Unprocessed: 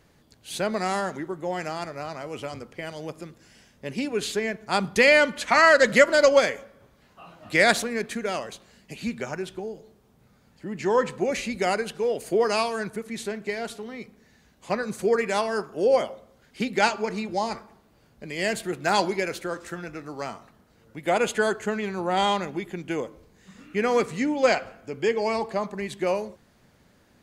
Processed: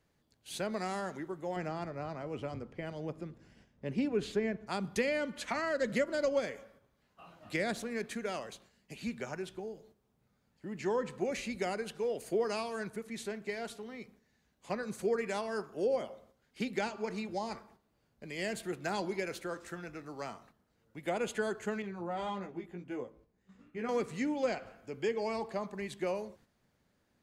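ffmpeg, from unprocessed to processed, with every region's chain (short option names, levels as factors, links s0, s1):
-filter_complex "[0:a]asettb=1/sr,asplit=3[s0][s1][s2];[s0]atrim=end=1.564[s3];[s1]atrim=start=1.56:end=4.67,asetpts=PTS-STARTPTS,afade=t=in:d=0.004:c=qsin,afade=t=out:st=3.106:d=0.004:c=qsin,lowpass=f=2500:p=1,lowshelf=f=420:g=7.5[s4];[s2]atrim=start=4.666[s5];[s3][s4]acrossfade=d=0.004:c1=hsin:c2=qsin[s6];[s6][s5]acrossfade=d=0.004:c1=qsin:c2=hsin,asettb=1/sr,asplit=3[s7][s8][s9];[s7]atrim=end=21.824[s10];[s8]atrim=start=21.82:end=23.89,asetpts=PTS-STARTPTS,afade=t=in:d=0.004:c=qsin,afade=t=out:st=2.066:d=0.004:c=qsin,highshelf=f=2200:g=-11.5,flanger=delay=15.5:depth=2.6:speed=1.8[s11];[s9]atrim=start=23.886[s12];[s10][s11]acrossfade=d=0.004:c1=hsin:c2=qsin[s13];[s13][s12]acrossfade=d=0.004:c1=qsin:c2=hsin,agate=range=0.447:threshold=0.00251:ratio=16:detection=peak,acrossover=split=460[s14][s15];[s15]acompressor=threshold=0.0447:ratio=5[s16];[s14][s16]amix=inputs=2:normalize=0,volume=0.398"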